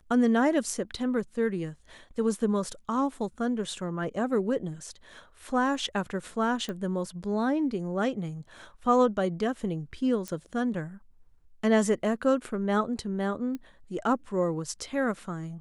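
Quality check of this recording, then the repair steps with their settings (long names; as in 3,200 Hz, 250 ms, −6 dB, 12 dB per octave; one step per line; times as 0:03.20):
0:06.69: click −22 dBFS
0:10.28: click −20 dBFS
0:13.55: click −24 dBFS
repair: click removal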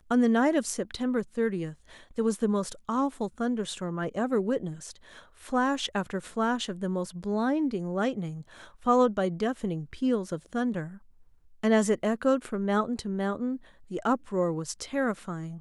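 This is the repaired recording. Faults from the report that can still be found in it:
none of them is left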